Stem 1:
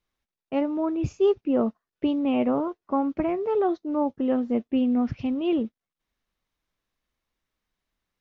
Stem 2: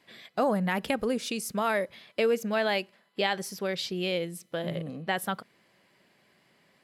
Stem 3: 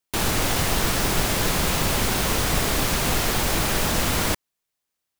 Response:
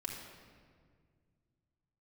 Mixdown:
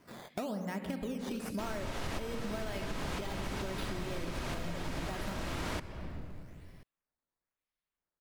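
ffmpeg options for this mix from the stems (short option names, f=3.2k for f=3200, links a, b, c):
-filter_complex "[0:a]tiltshelf=f=970:g=-4.5,adelay=50,volume=-14dB[a];[1:a]lowshelf=f=260:g=11.5,volume=-0.5dB,asplit=3[b][c][d];[c]volume=-11dB[e];[2:a]aemphasis=mode=reproduction:type=50fm,adelay=1450,volume=-2dB,asplit=2[f][g];[g]volume=-10dB[h];[d]apad=whole_len=293108[i];[f][i]sidechaincompress=threshold=-39dB:ratio=8:attack=16:release=351[j];[a][b]amix=inputs=2:normalize=0,acrusher=samples=11:mix=1:aa=0.000001:lfo=1:lforange=11:lforate=1,acompressor=threshold=-38dB:ratio=3,volume=0dB[k];[3:a]atrim=start_sample=2205[l];[e][h]amix=inputs=2:normalize=0[m];[m][l]afir=irnorm=-1:irlink=0[n];[j][k][n]amix=inputs=3:normalize=0,acompressor=threshold=-34dB:ratio=6"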